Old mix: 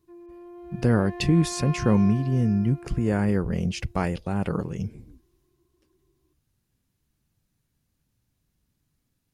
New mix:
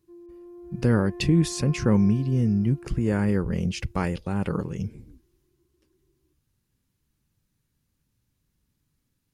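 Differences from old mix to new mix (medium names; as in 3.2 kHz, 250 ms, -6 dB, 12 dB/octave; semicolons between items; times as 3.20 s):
background: add band-pass filter 270 Hz, Q 0.63; master: add peaking EQ 690 Hz -6.5 dB 0.27 oct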